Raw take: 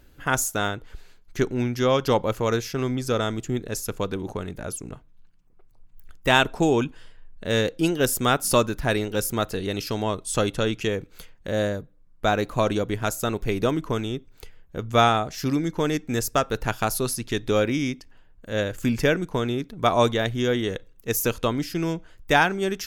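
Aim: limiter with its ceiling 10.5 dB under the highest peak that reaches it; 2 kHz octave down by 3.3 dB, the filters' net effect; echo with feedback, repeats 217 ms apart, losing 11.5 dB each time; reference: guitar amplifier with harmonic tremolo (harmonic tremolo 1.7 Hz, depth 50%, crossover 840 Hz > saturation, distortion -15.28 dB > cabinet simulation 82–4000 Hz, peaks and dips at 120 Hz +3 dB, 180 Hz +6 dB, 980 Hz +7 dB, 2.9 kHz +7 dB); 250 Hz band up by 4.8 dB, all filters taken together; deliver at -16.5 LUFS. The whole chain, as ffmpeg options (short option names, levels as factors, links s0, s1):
-filter_complex "[0:a]equalizer=f=250:t=o:g=4.5,equalizer=f=2000:t=o:g=-7,alimiter=limit=0.15:level=0:latency=1,aecho=1:1:217|434|651:0.266|0.0718|0.0194,acrossover=split=840[s0][s1];[s0]aeval=exprs='val(0)*(1-0.5/2+0.5/2*cos(2*PI*1.7*n/s))':c=same[s2];[s1]aeval=exprs='val(0)*(1-0.5/2-0.5/2*cos(2*PI*1.7*n/s))':c=same[s3];[s2][s3]amix=inputs=2:normalize=0,asoftclip=threshold=0.075,highpass=82,equalizer=f=120:t=q:w=4:g=3,equalizer=f=180:t=q:w=4:g=6,equalizer=f=980:t=q:w=4:g=7,equalizer=f=2900:t=q:w=4:g=7,lowpass=f=4000:w=0.5412,lowpass=f=4000:w=1.3066,volume=5.62"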